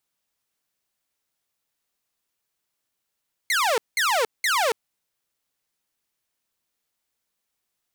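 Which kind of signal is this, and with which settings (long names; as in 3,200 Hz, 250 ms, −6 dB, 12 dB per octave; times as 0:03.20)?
repeated falling chirps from 2,200 Hz, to 420 Hz, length 0.28 s saw, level −16.5 dB, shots 3, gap 0.19 s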